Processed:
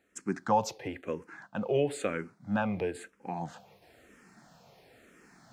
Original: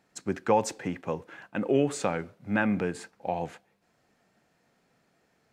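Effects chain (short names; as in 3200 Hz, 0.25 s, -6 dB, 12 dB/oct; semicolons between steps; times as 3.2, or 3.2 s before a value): reverse; upward compressor, threshold -42 dBFS; reverse; endless phaser -1 Hz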